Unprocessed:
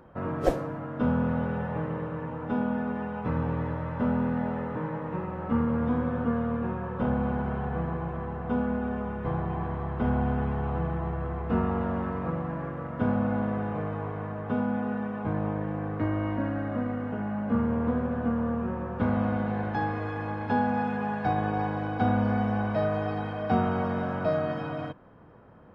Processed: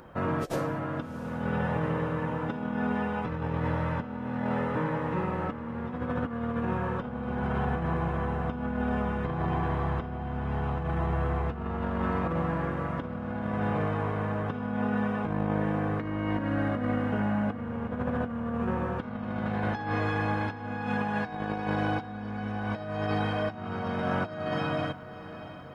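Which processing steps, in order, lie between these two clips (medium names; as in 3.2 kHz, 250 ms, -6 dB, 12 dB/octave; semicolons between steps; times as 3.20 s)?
treble shelf 2.2 kHz +11 dB; compressor with a negative ratio -30 dBFS, ratio -0.5; on a send: echo that smears into a reverb 708 ms, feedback 47%, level -13.5 dB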